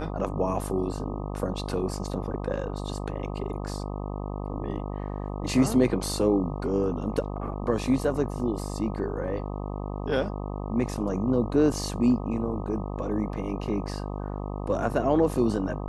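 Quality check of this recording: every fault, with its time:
buzz 50 Hz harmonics 25 -33 dBFS

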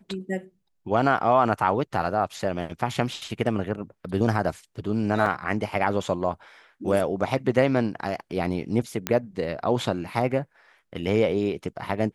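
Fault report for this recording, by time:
5.26 gap 2.1 ms
9.07 pop -8 dBFS

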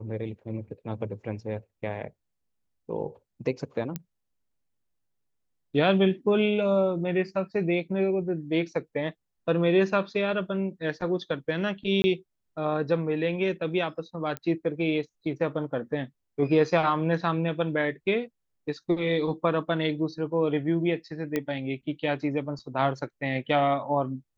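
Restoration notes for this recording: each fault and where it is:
3.96 pop -17 dBFS
12.02–12.04 gap 20 ms
14.37 pop -18 dBFS
21.36 pop -14 dBFS

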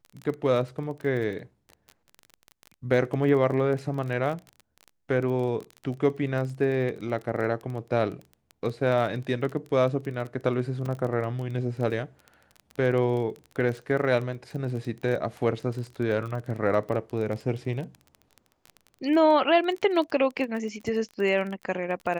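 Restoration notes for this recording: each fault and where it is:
crackle 21/s -32 dBFS
10.86 gap 3.9 ms

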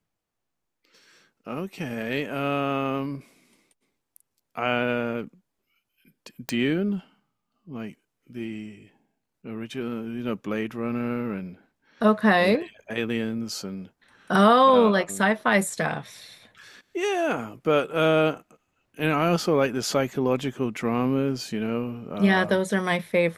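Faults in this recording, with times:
6.49 pop -10 dBFS

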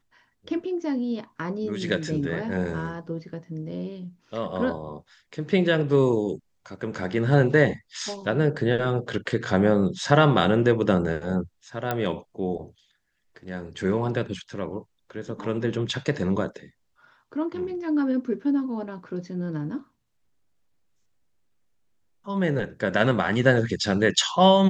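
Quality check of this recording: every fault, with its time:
11.91 pop -12 dBFS

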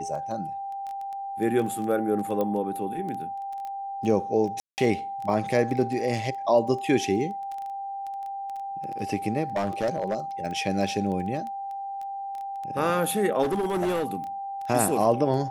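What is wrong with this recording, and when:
crackle 10/s -31 dBFS
tone 790 Hz -31 dBFS
2.41 pop -16 dBFS
4.6–4.78 gap 0.179 s
9.56–10.17 clipped -21 dBFS
13.42–14.05 clipped -22 dBFS

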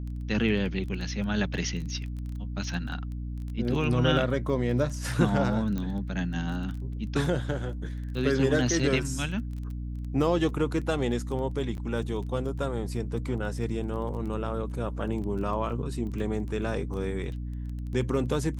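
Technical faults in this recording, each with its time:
crackle 12/s -35 dBFS
hum 60 Hz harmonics 5 -34 dBFS
5.78 pop -20 dBFS
11.77–11.78 gap 9.5 ms
15.22 gap 4.1 ms

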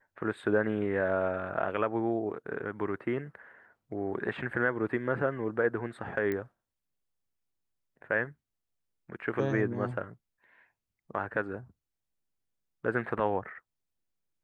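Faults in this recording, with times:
6.32 pop -21 dBFS

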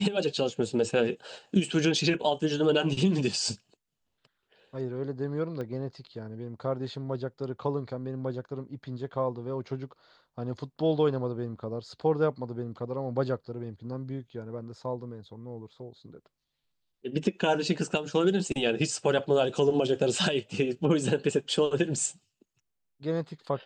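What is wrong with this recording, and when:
5.61 pop -25 dBFS

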